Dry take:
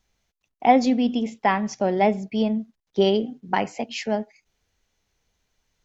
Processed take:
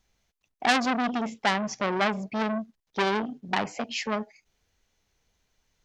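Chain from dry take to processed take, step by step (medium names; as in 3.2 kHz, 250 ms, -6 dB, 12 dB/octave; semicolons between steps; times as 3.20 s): transformer saturation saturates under 3.4 kHz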